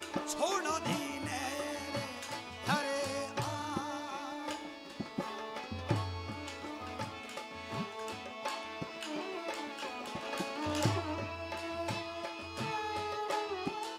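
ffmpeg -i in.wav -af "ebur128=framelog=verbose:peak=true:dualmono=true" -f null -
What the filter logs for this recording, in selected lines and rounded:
Integrated loudness:
  I:         -34.8 LUFS
  Threshold: -44.8 LUFS
Loudness range:
  LRA:         4.5 LU
  Threshold: -55.2 LUFS
  LRA low:   -37.5 LUFS
  LRA high:  -33.0 LUFS
True peak:
  Peak:      -15.7 dBFS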